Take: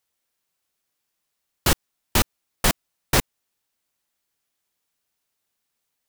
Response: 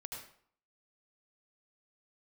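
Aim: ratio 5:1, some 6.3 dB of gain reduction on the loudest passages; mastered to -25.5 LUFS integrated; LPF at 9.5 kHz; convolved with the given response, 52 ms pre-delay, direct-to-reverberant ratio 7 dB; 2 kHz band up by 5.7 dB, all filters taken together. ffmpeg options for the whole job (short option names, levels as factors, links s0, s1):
-filter_complex "[0:a]lowpass=9500,equalizer=f=2000:t=o:g=7,acompressor=threshold=0.1:ratio=5,asplit=2[s0][s1];[1:a]atrim=start_sample=2205,adelay=52[s2];[s1][s2]afir=irnorm=-1:irlink=0,volume=0.596[s3];[s0][s3]amix=inputs=2:normalize=0,volume=1.33"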